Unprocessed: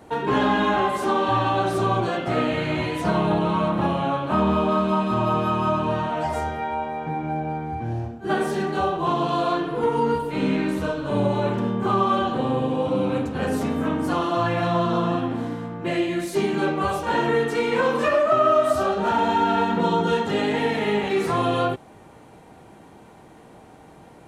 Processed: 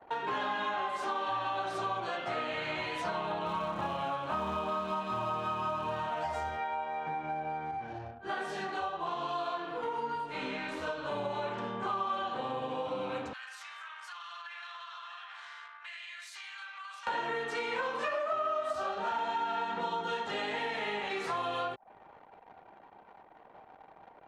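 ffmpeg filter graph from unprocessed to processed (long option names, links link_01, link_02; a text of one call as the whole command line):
ffmpeg -i in.wav -filter_complex "[0:a]asettb=1/sr,asplit=3[link_01][link_02][link_03];[link_01]atrim=end=3.464[link_04];[link_02]atrim=start=3.46:end=6.57,asetpts=PTS-STARTPTS,afade=type=in:duration=0.004:curve=qsin,afade=type=out:start_time=3.106:duration=0.004:curve=qsin,lowshelf=frequency=130:gain=11,acrusher=bits=8:mode=log:mix=0:aa=0.000001[link_05];[link_03]atrim=start=6.566[link_06];[link_04][link_05]acrossfade=duration=0.004:curve1=hsin:curve2=qsin[link_07];[link_07][link_06]acrossfade=duration=0.004:curve1=qsin:curve2=hsin,asettb=1/sr,asplit=3[link_08][link_09][link_10];[link_08]atrim=end=7.714[link_11];[link_09]atrim=start=7.71:end=10.87,asetpts=PTS-STARTPTS,afade=type=in:duration=0.004:curve=qsin,afade=type=out:start_time=3.156:duration=0.004:curve=qsin,flanger=delay=20:depth=4.4:speed=1.2,aecho=1:1:80:0.237,atrim=end_sample=139356[link_12];[link_10]atrim=start=10.866[link_13];[link_11][link_12]acrossfade=duration=0.004:curve1=hsin:curve2=qsin[link_14];[link_14][link_13]acrossfade=duration=0.004:curve1=qsin:curve2=hsin,asettb=1/sr,asplit=3[link_15][link_16][link_17];[link_15]atrim=end=13.334[link_18];[link_16]atrim=start=13.33:end=17.07,asetpts=PTS-STARTPTS,afade=type=in:duration=0.004:curve=qsin,afade=type=out:start_time=3.736:duration=0.004:curve=qsin,highpass=frequency=1300:width=0.5412,highpass=frequency=1300:width=1.3066,acompressor=threshold=-42dB:ratio=6:attack=3.2:release=140:knee=1:detection=peak[link_19];[link_17]atrim=start=17.066[link_20];[link_18][link_19]acrossfade=duration=0.004:curve1=hsin:curve2=qsin[link_21];[link_21][link_20]acrossfade=duration=0.004:curve1=qsin:curve2=hsin,acrossover=split=570 7500:gain=0.178 1 0.158[link_22][link_23][link_24];[link_22][link_23][link_24]amix=inputs=3:normalize=0,acompressor=threshold=-34dB:ratio=3,anlmdn=0.00398" out.wav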